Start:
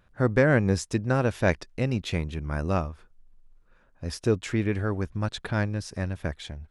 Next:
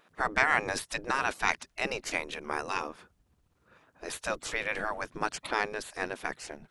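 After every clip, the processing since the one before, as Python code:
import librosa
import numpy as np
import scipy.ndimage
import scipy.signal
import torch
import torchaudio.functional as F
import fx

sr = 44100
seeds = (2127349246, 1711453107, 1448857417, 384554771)

y = fx.spec_gate(x, sr, threshold_db=-15, keep='weak')
y = F.gain(torch.from_numpy(y), 6.5).numpy()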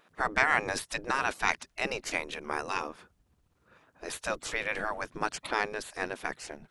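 y = x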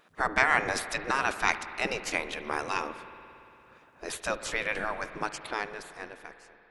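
y = fx.fade_out_tail(x, sr, length_s=2.03)
y = fx.rev_spring(y, sr, rt60_s=3.1, pass_ms=(57,), chirp_ms=20, drr_db=11.0)
y = F.gain(torch.from_numpy(y), 1.5).numpy()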